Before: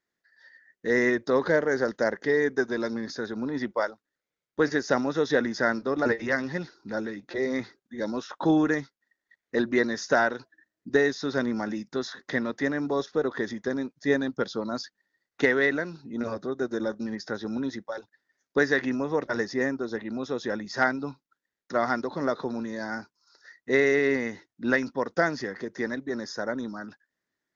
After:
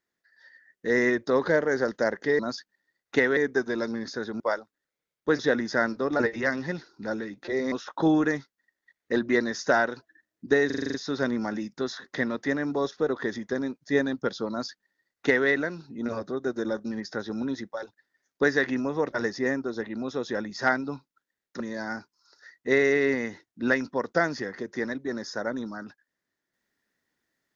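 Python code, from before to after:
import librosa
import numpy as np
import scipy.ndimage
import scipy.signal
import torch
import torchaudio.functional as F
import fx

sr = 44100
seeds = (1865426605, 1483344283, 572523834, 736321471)

y = fx.edit(x, sr, fx.cut(start_s=3.42, length_s=0.29),
    fx.cut(start_s=4.7, length_s=0.55),
    fx.cut(start_s=7.58, length_s=0.57),
    fx.stutter(start_s=11.09, slice_s=0.04, count=8),
    fx.duplicate(start_s=14.65, length_s=0.98, to_s=2.39),
    fx.cut(start_s=21.75, length_s=0.87), tone=tone)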